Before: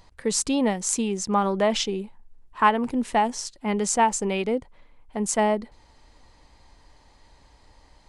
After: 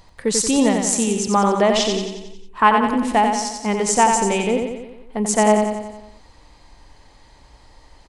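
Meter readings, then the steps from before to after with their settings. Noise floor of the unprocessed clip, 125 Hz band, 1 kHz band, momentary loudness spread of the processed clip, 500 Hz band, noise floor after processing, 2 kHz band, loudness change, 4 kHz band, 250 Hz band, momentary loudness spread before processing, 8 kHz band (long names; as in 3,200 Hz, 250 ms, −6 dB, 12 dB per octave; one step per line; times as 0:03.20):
−57 dBFS, can't be measured, +6.0 dB, 14 LU, +6.5 dB, −50 dBFS, +6.0 dB, +6.0 dB, +6.0 dB, +6.5 dB, 9 LU, +6.0 dB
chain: repeating echo 90 ms, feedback 55%, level −5 dB
level +4.5 dB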